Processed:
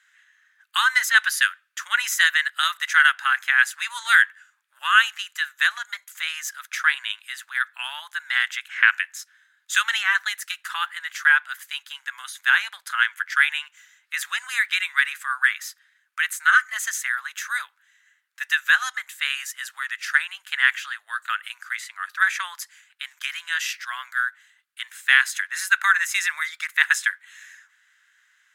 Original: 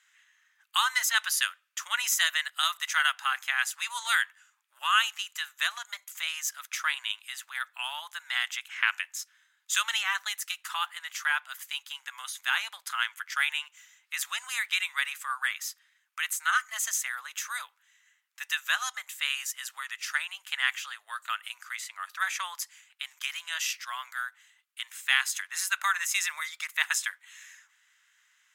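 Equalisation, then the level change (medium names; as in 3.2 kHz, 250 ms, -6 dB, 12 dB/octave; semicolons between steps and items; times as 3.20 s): dynamic bell 2 kHz, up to +4 dB, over -41 dBFS, Q 1.2; fifteen-band graphic EQ 1.6 kHz +11 dB, 4 kHz +4 dB, 10 kHz +3 dB; -2.0 dB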